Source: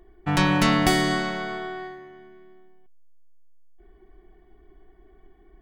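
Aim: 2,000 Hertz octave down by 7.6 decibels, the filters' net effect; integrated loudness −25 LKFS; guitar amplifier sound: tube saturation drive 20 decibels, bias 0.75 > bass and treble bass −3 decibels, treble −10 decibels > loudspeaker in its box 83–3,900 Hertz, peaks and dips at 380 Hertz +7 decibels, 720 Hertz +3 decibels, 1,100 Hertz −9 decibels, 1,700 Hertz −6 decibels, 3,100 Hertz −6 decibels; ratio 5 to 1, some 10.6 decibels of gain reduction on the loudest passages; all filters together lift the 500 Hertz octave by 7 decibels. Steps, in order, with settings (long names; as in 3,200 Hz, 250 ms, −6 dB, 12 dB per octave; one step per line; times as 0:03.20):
parametric band 500 Hz +4.5 dB
parametric band 2,000 Hz −4 dB
downward compressor 5 to 1, threshold −27 dBFS
tube saturation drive 20 dB, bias 0.75
bass and treble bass −3 dB, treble −10 dB
loudspeaker in its box 83–3,900 Hz, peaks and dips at 380 Hz +7 dB, 720 Hz +3 dB, 1,100 Hz −9 dB, 1,700 Hz −6 dB, 3,100 Hz −6 dB
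level +10 dB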